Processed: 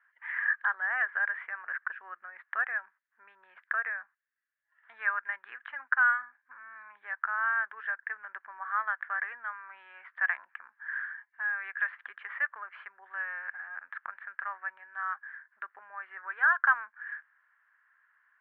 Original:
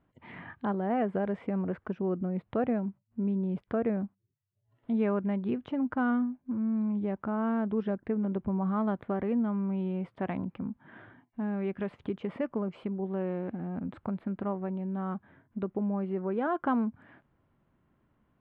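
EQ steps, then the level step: high-pass 1.2 kHz 24 dB/octave; resonant low-pass 1.7 kHz, resonance Q 8.9; +4.0 dB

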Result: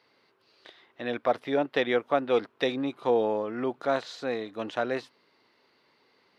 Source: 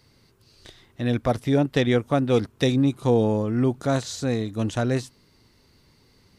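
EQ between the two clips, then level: high-pass 510 Hz 12 dB/octave; distance through air 370 m; treble shelf 5.6 kHz +11 dB; +2.0 dB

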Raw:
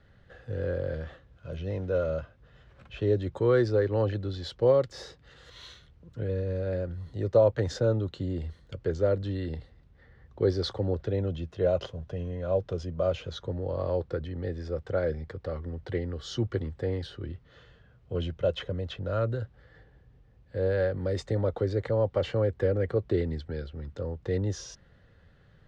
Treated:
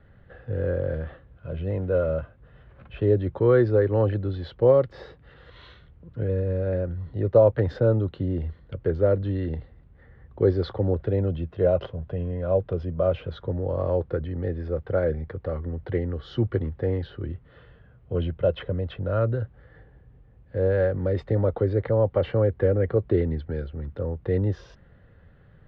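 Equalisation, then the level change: distance through air 420 m; +5.5 dB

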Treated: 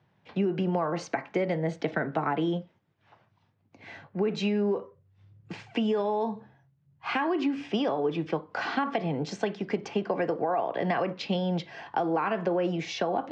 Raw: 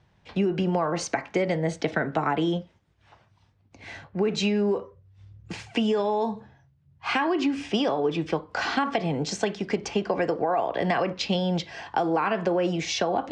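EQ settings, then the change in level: high-pass 110 Hz 24 dB/octave; distance through air 63 m; treble shelf 4.8 kHz -8 dB; -2.5 dB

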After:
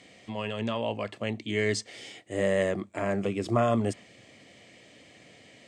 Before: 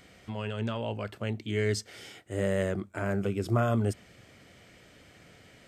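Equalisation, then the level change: band-stop 1.5 kHz, Q 5.4; dynamic bell 1.2 kHz, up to +6 dB, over -48 dBFS, Q 1.1; cabinet simulation 160–8700 Hz, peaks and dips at 170 Hz -5 dB, 400 Hz -4 dB, 880 Hz -4 dB, 1.3 kHz -8 dB, 5.4 kHz -3 dB; +4.0 dB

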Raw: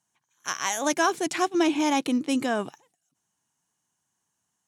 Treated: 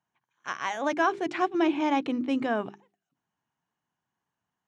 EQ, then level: low-pass 2.5 kHz 12 dB/octave; hum notches 50/100/150/200/250/300/350/400 Hz; -1.0 dB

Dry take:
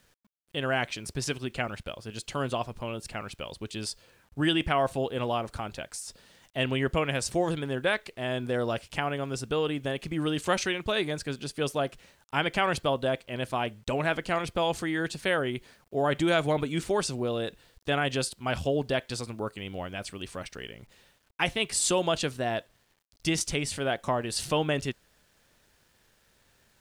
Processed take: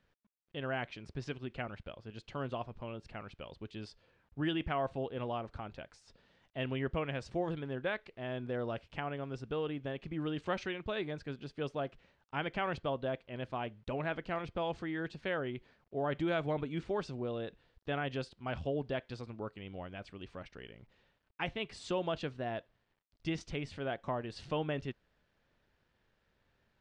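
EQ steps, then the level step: tape spacing loss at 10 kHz 43 dB; treble shelf 2.4 kHz +11.5 dB; -6.5 dB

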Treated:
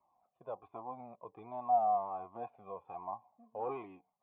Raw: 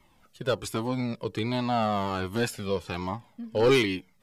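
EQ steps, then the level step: cascade formant filter a; high-pass 130 Hz 6 dB/octave; peaking EQ 1.3 kHz -4.5 dB 0.93 oct; +3.5 dB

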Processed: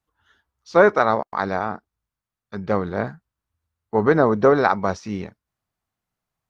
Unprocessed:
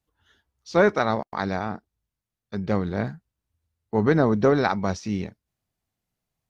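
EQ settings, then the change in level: dynamic bell 490 Hz, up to +6 dB, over -33 dBFS, Q 0.98; peaking EQ 1.2 kHz +8.5 dB 1.3 oct; -2.5 dB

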